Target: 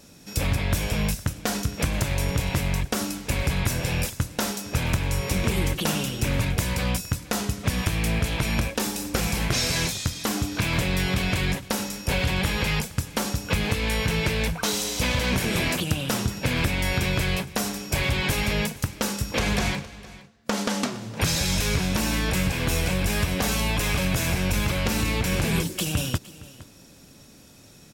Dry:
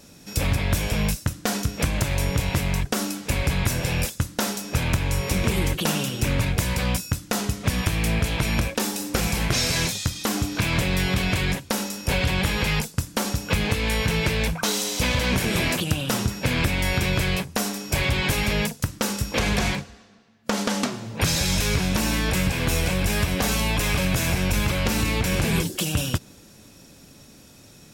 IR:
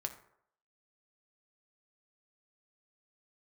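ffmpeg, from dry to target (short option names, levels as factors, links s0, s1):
-af "aecho=1:1:463:0.112,volume=0.841"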